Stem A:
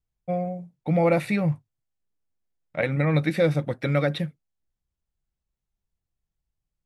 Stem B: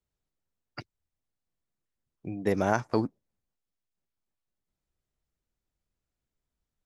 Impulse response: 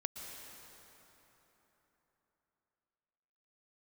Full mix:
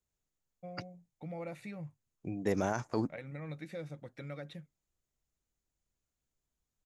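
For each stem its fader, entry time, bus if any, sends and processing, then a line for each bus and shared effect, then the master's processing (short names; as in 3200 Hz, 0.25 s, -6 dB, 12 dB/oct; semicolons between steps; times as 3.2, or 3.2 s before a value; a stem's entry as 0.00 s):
-16.5 dB, 0.35 s, no send, compressor 1.5:1, threshold -31 dBFS, peak gain reduction 5.5 dB
-2.5 dB, 0.00 s, no send, limiter -17.5 dBFS, peak gain reduction 8 dB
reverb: off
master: bell 6800 Hz +9 dB 0.33 oct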